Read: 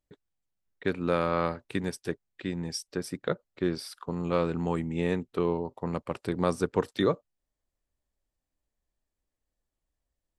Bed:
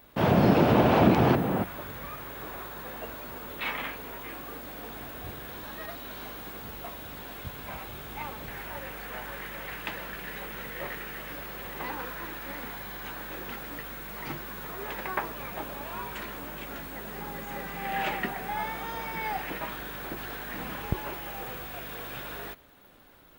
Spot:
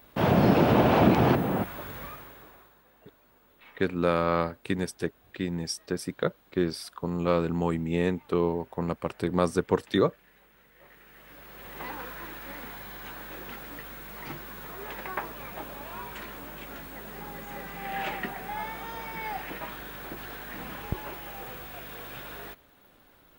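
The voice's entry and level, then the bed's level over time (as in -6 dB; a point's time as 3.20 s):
2.95 s, +2.0 dB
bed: 2.03 s 0 dB
2.84 s -21.5 dB
10.71 s -21.5 dB
11.81 s -2.5 dB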